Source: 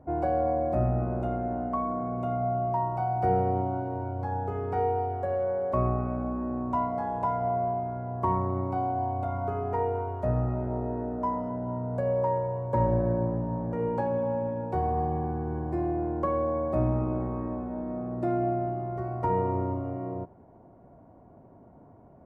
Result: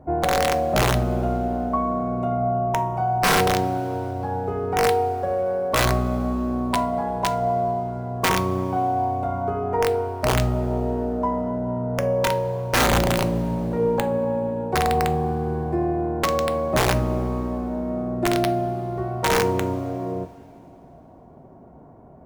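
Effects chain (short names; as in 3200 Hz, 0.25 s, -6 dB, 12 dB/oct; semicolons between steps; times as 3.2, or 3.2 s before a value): wrapped overs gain 18.5 dB; two-slope reverb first 0.31 s, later 3.1 s, from -18 dB, DRR 9 dB; gain +6 dB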